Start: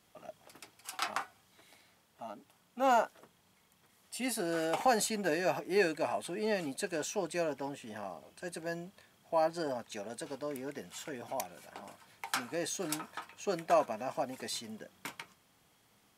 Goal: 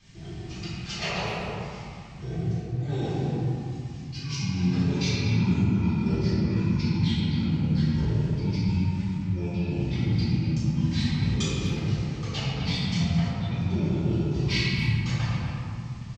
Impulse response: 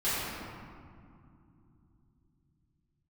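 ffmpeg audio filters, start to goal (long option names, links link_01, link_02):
-filter_complex "[0:a]lowpass=11000,lowshelf=frequency=460:width_type=q:width=1.5:gain=11.5,areverse,acompressor=threshold=-36dB:ratio=12,areverse,asetrate=24046,aresample=44100,atempo=1.83401,aexciter=amount=2.3:drive=7.4:freq=2100,aphaser=in_gain=1:out_gain=1:delay=2.4:decay=0.32:speed=1.3:type=triangular,asplit=2[link_01][link_02];[link_02]adelay=250,highpass=300,lowpass=3400,asoftclip=type=hard:threshold=-30dB,volume=-7dB[link_03];[link_01][link_03]amix=inputs=2:normalize=0[link_04];[1:a]atrim=start_sample=2205[link_05];[link_04][link_05]afir=irnorm=-1:irlink=0"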